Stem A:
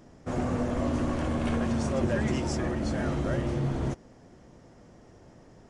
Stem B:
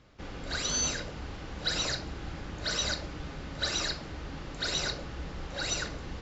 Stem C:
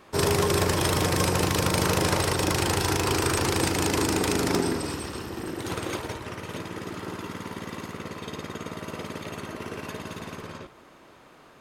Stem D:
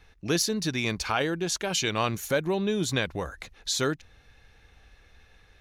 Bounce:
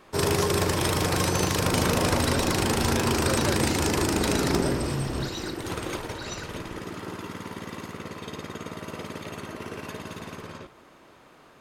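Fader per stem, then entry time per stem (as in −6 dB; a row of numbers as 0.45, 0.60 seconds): −1.5, −6.5, −1.0, −10.5 decibels; 1.35, 0.60, 0.00, 0.00 seconds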